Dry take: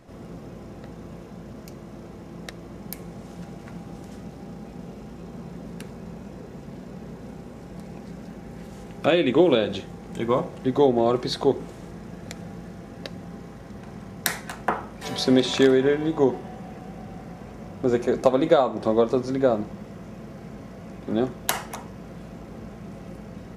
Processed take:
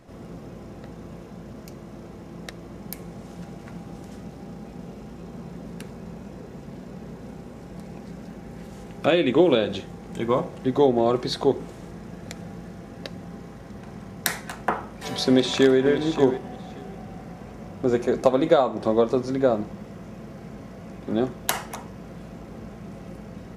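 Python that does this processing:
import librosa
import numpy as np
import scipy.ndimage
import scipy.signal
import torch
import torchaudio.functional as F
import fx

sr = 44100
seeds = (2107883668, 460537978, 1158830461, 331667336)

y = fx.echo_throw(x, sr, start_s=15.27, length_s=0.52, ms=580, feedback_pct=15, wet_db=-10.5)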